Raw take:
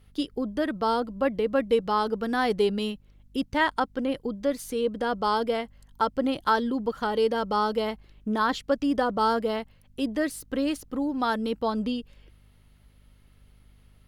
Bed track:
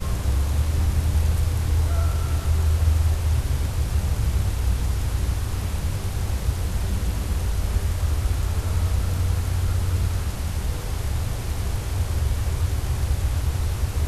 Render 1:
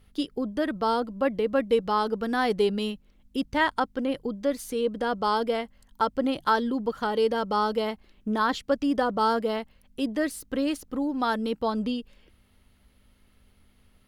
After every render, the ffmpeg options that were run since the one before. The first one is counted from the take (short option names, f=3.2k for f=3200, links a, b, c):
-af "bandreject=f=50:t=h:w=4,bandreject=f=100:t=h:w=4,bandreject=f=150:t=h:w=4"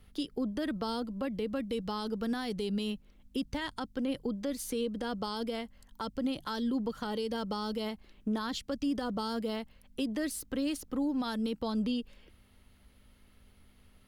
-filter_complex "[0:a]acrossover=split=260|3000[a][b][c];[b]acompressor=threshold=-34dB:ratio=6[d];[a][d][c]amix=inputs=3:normalize=0,alimiter=level_in=0.5dB:limit=-24dB:level=0:latency=1:release=71,volume=-0.5dB"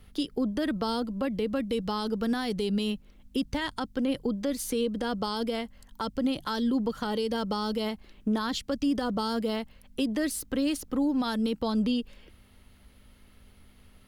-af "volume=5dB"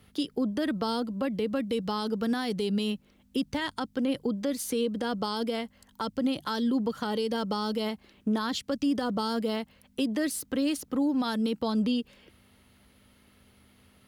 -af "highpass=94"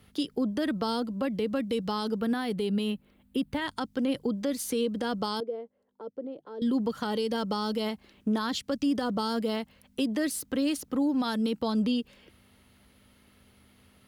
-filter_complex "[0:a]asettb=1/sr,asplit=3[a][b][c];[a]atrim=end=2.204[d];[b]atrim=start=2.2:end=3.68,asetpts=PTS-STARTPTS,afade=t=in:d=0.004:c=qsin,afade=t=out:st=1.476:d=0.004:c=qsin,equalizer=f=5.9k:t=o:w=0.8:g=-12[e];[c]atrim=start=3.676[f];[d][e]acrossfade=d=0.004:c1=hsin:c2=qsin[g];[g][f]acrossfade=d=0.004:c1=qsin:c2=hsin,asettb=1/sr,asplit=3[h][i][j];[h]atrim=end=5.404[k];[i]atrim=start=5.4:end=6.62,asetpts=PTS-STARTPTS,afade=t=in:d=0.004:c=qsin,afade=t=out:st=1.216:d=0.004:c=qsin,bandpass=f=460:t=q:w=3.5[l];[j]atrim=start=6.616[m];[k][l]acrossfade=d=0.004:c1=hsin:c2=qsin[n];[n][m]acrossfade=d=0.004:c1=qsin:c2=hsin"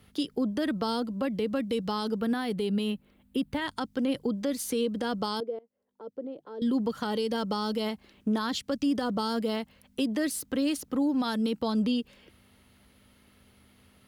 -filter_complex "[0:a]asplit=2[a][b];[a]atrim=end=5.59,asetpts=PTS-STARTPTS,afade=t=out:st=5.586:d=0.004:c=hsin:silence=0.0749894[c];[b]atrim=start=5.59,asetpts=PTS-STARTPTS,afade=t=in:d=0.59:silence=0.0749894[d];[c][d]concat=n=2:v=0:a=1"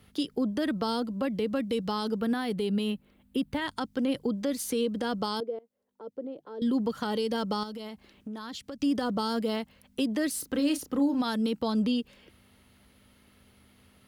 -filter_complex "[0:a]asettb=1/sr,asplit=3[a][b][c];[a]atrim=end=7.634[d];[b]atrim=start=7.63:end=8.8,asetpts=PTS-STARTPTS,afade=t=in:d=0.004:c=qsin,afade=t=out:st=1.166:d=0.004:c=qsin,acompressor=threshold=-37dB:ratio=4:attack=3.2:release=140:knee=1:detection=peak[e];[c]atrim=start=8.796[f];[d][e]acrossfade=d=0.004:c1=hsin:c2=qsin[g];[g][f]acrossfade=d=0.004:c1=qsin:c2=hsin,asettb=1/sr,asplit=3[h][i][j];[h]atrim=end=10.324[k];[i]atrim=start=10.32:end=11.21,asetpts=PTS-STARTPTS,afade=t=in:d=0.004:c=qsin,afade=t=out:st=0.886:d=0.004:c=qsin,asplit=2[l][m];[m]adelay=32,volume=-9dB[n];[l][n]amix=inputs=2:normalize=0,atrim=end_sample=39249[o];[j]atrim=start=11.206[p];[k][o]acrossfade=d=0.004:c1=hsin:c2=qsin[q];[q][p]acrossfade=d=0.004:c1=qsin:c2=hsin"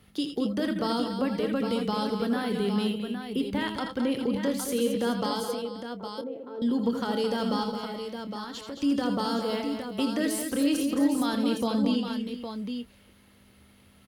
-filter_complex "[0:a]asplit=2[a][b];[b]adelay=25,volume=-13dB[c];[a][c]amix=inputs=2:normalize=0,asplit=2[d][e];[e]aecho=0:1:79|85|217|425|811:0.316|0.251|0.398|0.2|0.422[f];[d][f]amix=inputs=2:normalize=0"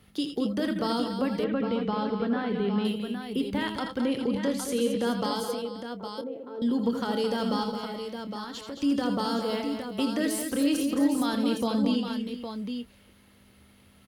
-filter_complex "[0:a]asettb=1/sr,asplit=3[a][b][c];[a]atrim=end=1.444[d];[b]atrim=start=1.44:end=2.85,asetpts=PTS-STARTPTS,afade=t=in:d=0.004:c=qsin,afade=t=out:st=1.406:d=0.004:c=qsin,lowpass=2.7k[e];[c]atrim=start=2.846[f];[d][e]acrossfade=d=0.004:c1=hsin:c2=qsin[g];[g][f]acrossfade=d=0.004:c1=qsin:c2=hsin,asettb=1/sr,asplit=3[h][i][j];[h]atrim=end=4.064[k];[i]atrim=start=4.06:end=5.06,asetpts=PTS-STARTPTS,afade=t=in:d=0.004:c=qsin,afade=t=out:st=0.996:d=0.004:c=qsin,lowpass=11k[l];[j]atrim=start=5.056[m];[k][l]acrossfade=d=0.004:c1=hsin:c2=qsin[n];[n][m]acrossfade=d=0.004:c1=qsin:c2=hsin"